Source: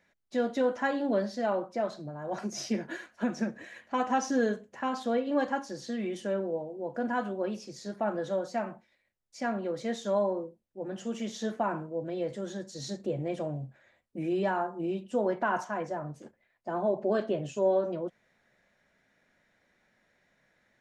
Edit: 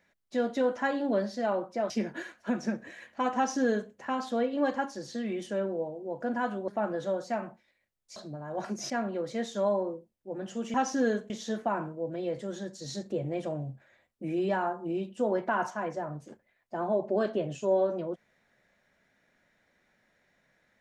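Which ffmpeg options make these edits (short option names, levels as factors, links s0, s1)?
-filter_complex "[0:a]asplit=7[s0][s1][s2][s3][s4][s5][s6];[s0]atrim=end=1.902[s7];[s1]atrim=start=2.638:end=7.422[s8];[s2]atrim=start=7.918:end=9.402[s9];[s3]atrim=start=1.898:end=2.642[s10];[s4]atrim=start=9.398:end=11.242[s11];[s5]atrim=start=4.098:end=4.662[s12];[s6]atrim=start=11.238[s13];[s7][s8]acrossfade=d=0.004:c1=hsin:c2=hsin[s14];[s14][s9]acrossfade=d=0.004:c1=hsin:c2=hsin[s15];[s15][s10]acrossfade=d=0.004:c1=hsin:c2=hsin[s16];[s16][s11]acrossfade=d=0.004:c1=hsin:c2=hsin[s17];[s17][s12]acrossfade=d=0.004:c1=hsin:c2=hsin[s18];[s18][s13]acrossfade=d=0.004:c1=hsin:c2=hsin"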